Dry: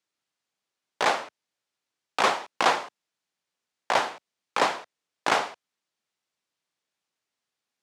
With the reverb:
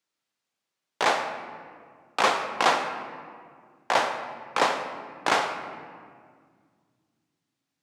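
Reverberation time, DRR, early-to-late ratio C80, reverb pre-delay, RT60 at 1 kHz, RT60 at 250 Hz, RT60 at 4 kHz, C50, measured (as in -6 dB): 1.9 s, 5.5 dB, 8.5 dB, 3 ms, 1.8 s, 3.0 s, 1.2 s, 7.5 dB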